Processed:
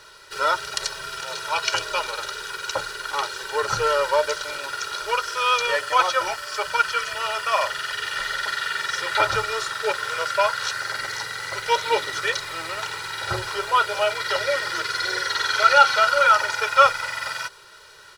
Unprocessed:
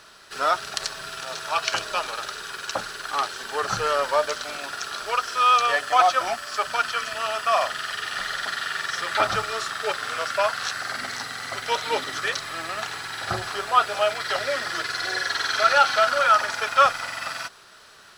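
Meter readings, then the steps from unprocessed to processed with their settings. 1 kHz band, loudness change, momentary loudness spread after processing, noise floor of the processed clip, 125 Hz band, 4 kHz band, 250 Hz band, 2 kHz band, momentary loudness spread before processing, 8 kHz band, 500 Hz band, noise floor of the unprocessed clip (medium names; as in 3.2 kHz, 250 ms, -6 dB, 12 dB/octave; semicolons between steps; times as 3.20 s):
+0.5 dB, +1.5 dB, 12 LU, -47 dBFS, +1.5 dB, +2.0 dB, -1.5 dB, +2.5 dB, 12 LU, +2.0 dB, +2.0 dB, -49 dBFS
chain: comb 2.1 ms, depth 95%; trim -1 dB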